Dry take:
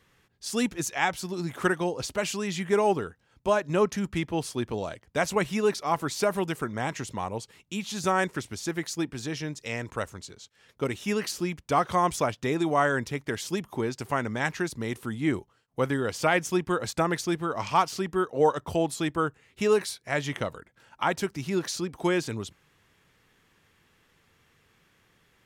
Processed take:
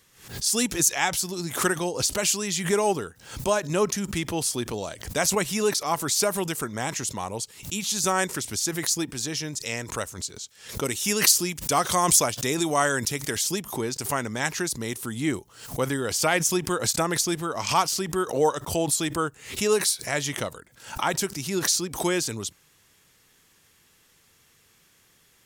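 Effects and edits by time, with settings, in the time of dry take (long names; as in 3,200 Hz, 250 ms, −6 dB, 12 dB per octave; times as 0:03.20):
0:10.84–0:13.37: high-shelf EQ 3,700 Hz +6.5 dB
whole clip: bass and treble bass −1 dB, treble +14 dB; background raised ahead of every attack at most 110 dB per second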